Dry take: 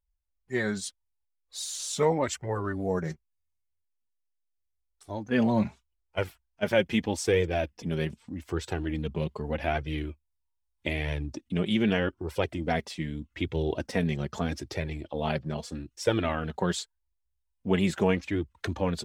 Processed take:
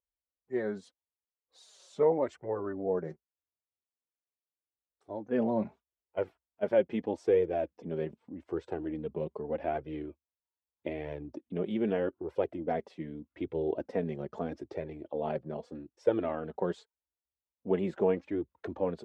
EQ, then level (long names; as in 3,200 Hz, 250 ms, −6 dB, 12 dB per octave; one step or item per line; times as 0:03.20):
resonant band-pass 470 Hz, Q 1.2
0.0 dB